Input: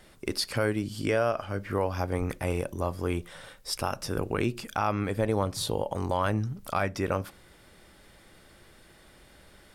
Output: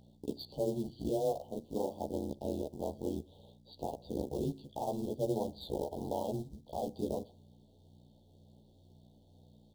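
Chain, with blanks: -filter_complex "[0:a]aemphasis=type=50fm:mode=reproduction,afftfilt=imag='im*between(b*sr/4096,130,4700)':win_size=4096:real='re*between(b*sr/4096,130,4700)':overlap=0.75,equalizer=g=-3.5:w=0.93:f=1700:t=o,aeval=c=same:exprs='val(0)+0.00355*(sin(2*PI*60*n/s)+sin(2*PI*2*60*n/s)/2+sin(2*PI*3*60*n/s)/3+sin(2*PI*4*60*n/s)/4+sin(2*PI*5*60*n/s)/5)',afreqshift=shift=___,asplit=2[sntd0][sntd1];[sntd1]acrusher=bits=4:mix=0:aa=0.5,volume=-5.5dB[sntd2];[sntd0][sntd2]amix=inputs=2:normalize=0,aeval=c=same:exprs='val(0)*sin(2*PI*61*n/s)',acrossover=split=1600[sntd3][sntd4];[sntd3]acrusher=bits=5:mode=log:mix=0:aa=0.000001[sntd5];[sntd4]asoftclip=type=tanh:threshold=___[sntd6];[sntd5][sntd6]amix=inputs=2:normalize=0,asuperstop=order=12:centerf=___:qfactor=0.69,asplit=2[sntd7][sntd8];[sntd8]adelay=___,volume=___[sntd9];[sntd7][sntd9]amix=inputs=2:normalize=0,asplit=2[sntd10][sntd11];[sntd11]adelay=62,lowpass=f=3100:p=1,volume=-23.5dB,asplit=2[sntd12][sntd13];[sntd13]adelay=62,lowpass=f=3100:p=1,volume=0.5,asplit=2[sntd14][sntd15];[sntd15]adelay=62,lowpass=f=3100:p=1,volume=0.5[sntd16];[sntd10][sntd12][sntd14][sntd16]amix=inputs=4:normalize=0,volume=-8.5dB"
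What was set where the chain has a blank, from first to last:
-29, -30.5dB, 1700, 14, -2dB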